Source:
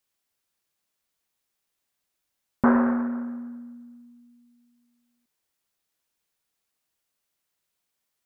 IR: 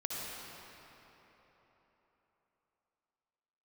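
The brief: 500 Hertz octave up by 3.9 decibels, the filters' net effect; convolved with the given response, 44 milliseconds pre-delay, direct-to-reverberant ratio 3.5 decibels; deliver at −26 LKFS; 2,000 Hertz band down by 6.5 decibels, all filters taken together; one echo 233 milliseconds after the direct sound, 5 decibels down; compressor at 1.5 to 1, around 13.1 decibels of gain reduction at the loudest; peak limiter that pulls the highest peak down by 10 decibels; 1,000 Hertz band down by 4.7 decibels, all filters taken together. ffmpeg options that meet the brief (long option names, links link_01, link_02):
-filter_complex "[0:a]equalizer=frequency=500:width_type=o:gain=6.5,equalizer=frequency=1000:width_type=o:gain=-6,equalizer=frequency=2000:width_type=o:gain=-7,acompressor=threshold=-52dB:ratio=1.5,alimiter=level_in=5.5dB:limit=-24dB:level=0:latency=1,volume=-5.5dB,aecho=1:1:233:0.562,asplit=2[link_01][link_02];[1:a]atrim=start_sample=2205,adelay=44[link_03];[link_02][link_03]afir=irnorm=-1:irlink=0,volume=-7dB[link_04];[link_01][link_04]amix=inputs=2:normalize=0,volume=16dB"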